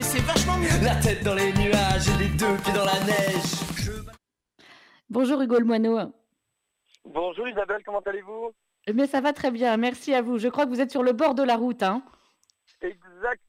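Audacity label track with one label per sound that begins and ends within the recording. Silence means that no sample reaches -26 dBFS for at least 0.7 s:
5.110000	6.050000	sound
7.160000	11.990000	sound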